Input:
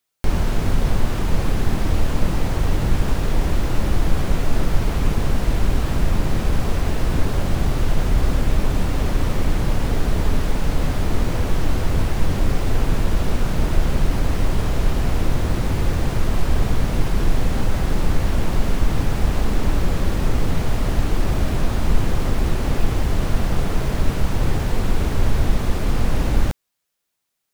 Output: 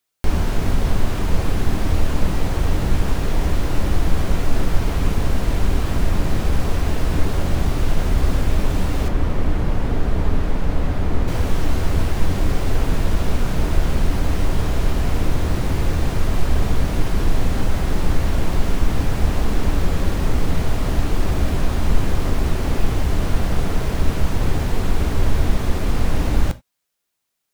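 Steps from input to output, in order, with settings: 9.08–11.28 high shelf 3500 Hz -11.5 dB; non-linear reverb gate 0.11 s falling, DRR 11.5 dB

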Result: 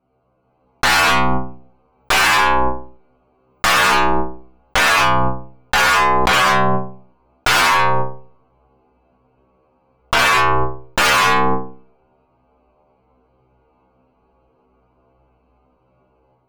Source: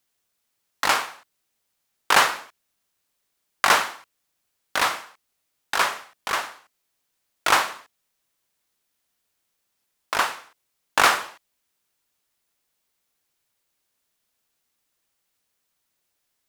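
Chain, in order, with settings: Wiener smoothing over 25 samples; low-pass opened by the level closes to 1500 Hz, open at -22.5 dBFS; on a send: band-limited delay 65 ms, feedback 35%, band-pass 530 Hz, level -18 dB; on the sum: non-linear reverb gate 0.14 s flat, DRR 0 dB; sample leveller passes 5; notch 1900 Hz, Q 14; one-sided clip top -23.5 dBFS, bottom -10 dBFS; high shelf 8100 Hz -7 dB; metallic resonator 62 Hz, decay 0.55 s, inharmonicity 0.002; AGC gain up to 6 dB; dynamic EQ 2000 Hz, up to +5 dB, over -34 dBFS, Q 1.2; fast leveller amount 100%; gain +2.5 dB

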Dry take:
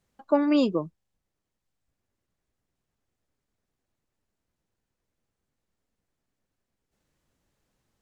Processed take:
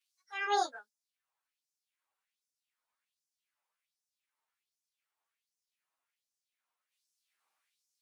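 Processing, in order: pitch shift by moving bins +5.5 st; LFO high-pass sine 1.3 Hz 950–5900 Hz

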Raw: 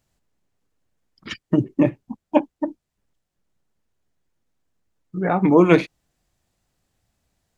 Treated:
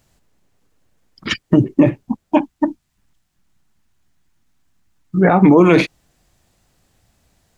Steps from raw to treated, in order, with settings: 2.36–5.19 bell 490 Hz -13 dB 0.79 oct; maximiser +12.5 dB; gain -1 dB

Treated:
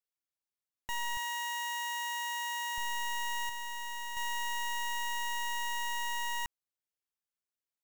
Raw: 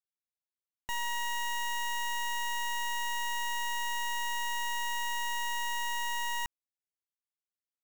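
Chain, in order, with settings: 1.17–2.78 HPF 530 Hz 12 dB/oct; 3.49–4.17 hard clip -37.5 dBFS, distortion -16 dB; gain -1.5 dB

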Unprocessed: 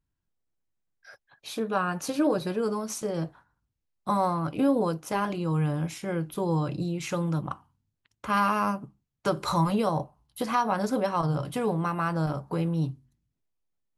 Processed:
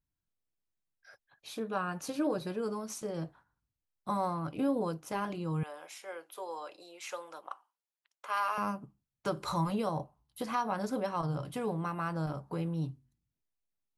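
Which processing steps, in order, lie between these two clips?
5.63–8.58 HPF 510 Hz 24 dB/oct; gain -7 dB

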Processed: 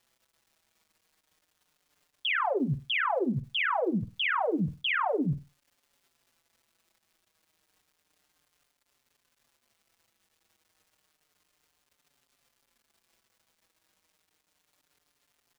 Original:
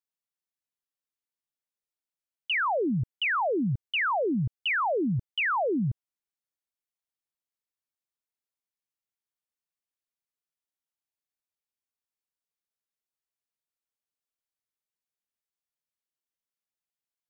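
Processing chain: limiter -31 dBFS, peak gain reduction 8 dB; flutter echo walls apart 9.5 m, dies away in 0.3 s; varispeed +11%; crackle 310/s -61 dBFS; endless flanger 5.5 ms -0.31 Hz; gain +9 dB

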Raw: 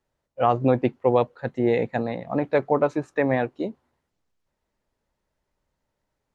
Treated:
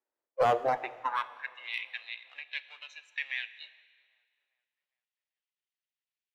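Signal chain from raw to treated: half-wave gain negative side -7 dB; HPF 130 Hz; low shelf 500 Hz -8 dB; limiter -17.5 dBFS, peak gain reduction 5 dB; high-pass sweep 300 Hz -> 2900 Hz, 0.21–1.6; darkening echo 0.399 s, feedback 49%, low-pass 3000 Hz, level -21.5 dB; overdrive pedal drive 8 dB, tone 1800 Hz, clips at -16 dBFS; one-sided clip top -25 dBFS, bottom -19 dBFS; spectral noise reduction 13 dB; Schroeder reverb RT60 1.7 s, combs from 26 ms, DRR 14.5 dB; gain +3 dB

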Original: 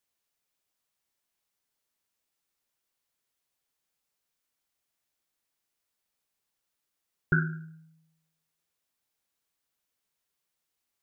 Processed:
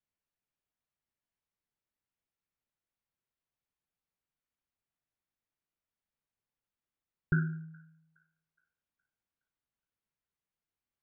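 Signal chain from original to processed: tone controls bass +8 dB, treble -15 dB; thin delay 0.417 s, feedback 40%, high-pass 1600 Hz, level -23.5 dB; gain -8 dB

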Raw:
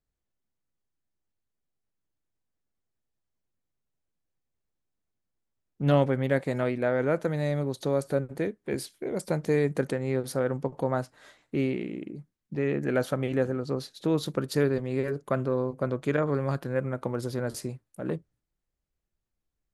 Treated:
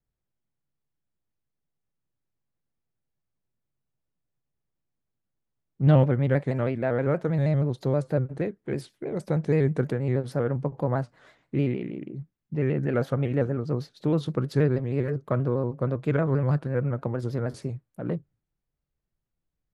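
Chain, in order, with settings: LPF 2300 Hz 6 dB/oct; bell 140 Hz +7.5 dB 0.56 oct; shaped vibrato square 6.3 Hz, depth 100 cents

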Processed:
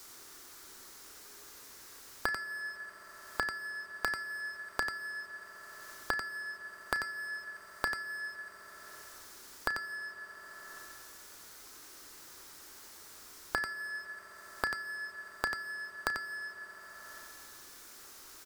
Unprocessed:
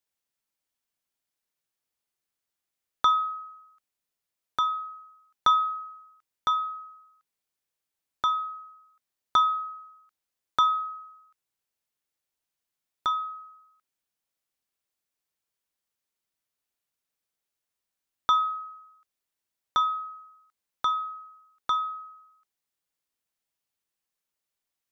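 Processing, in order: graphic EQ 125/250/500/1000/2000/4000 Hz -8/+6/-5/+5/-6/+5 dB; sample leveller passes 2; compressor 4:1, threshold -43 dBFS, peak gain reduction 23.5 dB; on a send: loudspeakers at several distances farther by 15 m -11 dB, 42 m -4 dB; on the sum: FDN reverb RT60 2.6 s, low-frequency decay 0.8×, high-frequency decay 0.9×, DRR 12.5 dB; speed mistake 33 rpm record played at 45 rpm; three-band squash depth 100%; gain +9.5 dB

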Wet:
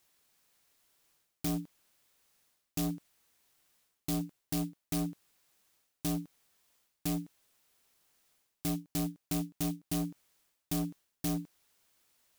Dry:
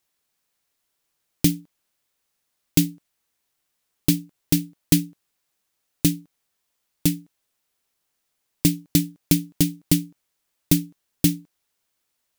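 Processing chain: reverse; compressor 6:1, threshold -29 dBFS, peak gain reduction 17 dB; reverse; overloaded stage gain 34 dB; gain +4.5 dB

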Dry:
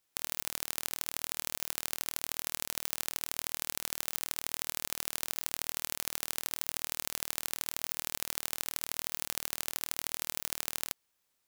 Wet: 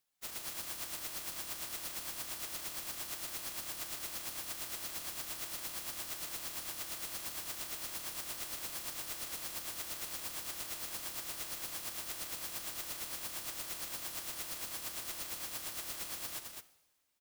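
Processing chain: plain phase-vocoder stretch 1.5×; two-slope reverb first 0.97 s, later 2.7 s, from -18 dB, DRR 14 dB; ring modulator 270 Hz; on a send: echo 0.212 s -4.5 dB

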